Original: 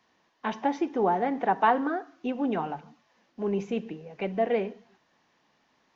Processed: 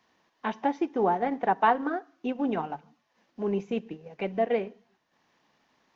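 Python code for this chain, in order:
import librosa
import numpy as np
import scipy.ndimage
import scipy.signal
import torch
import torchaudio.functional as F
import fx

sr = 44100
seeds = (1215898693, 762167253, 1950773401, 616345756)

y = fx.transient(x, sr, attack_db=0, sustain_db=-7)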